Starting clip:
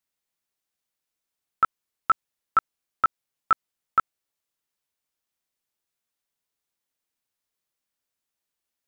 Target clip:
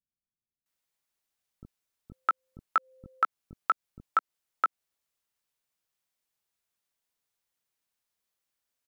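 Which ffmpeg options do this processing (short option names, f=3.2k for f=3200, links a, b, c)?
-filter_complex "[0:a]asettb=1/sr,asplit=3[a][b][c];[a]atrim=end=2.114[d];[b]atrim=start=2.11:end=2.58,asetpts=PTS-STARTPTS,afade=t=in:d=0.004:c=qsin,afade=t=out:st=0.466:d=0.004:c=qsin,aeval=exprs='val(0)+0.00158*sin(2*PI*520*n/s)':c=same[e];[c]atrim=start=2.576[f];[d][e]acrossfade=d=0.004:c1=hsin:c2=qsin[g];[g][f]acrossfade=d=0.004:c1=qsin:c2=hsin,acrossover=split=280[h][i];[i]adelay=660[j];[h][j]amix=inputs=2:normalize=0,acompressor=threshold=-22dB:ratio=6"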